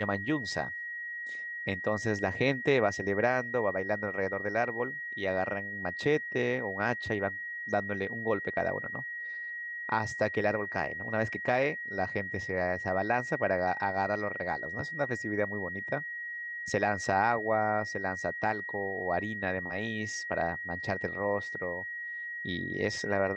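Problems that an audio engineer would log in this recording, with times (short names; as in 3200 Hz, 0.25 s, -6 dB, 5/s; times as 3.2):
tone 1900 Hz -36 dBFS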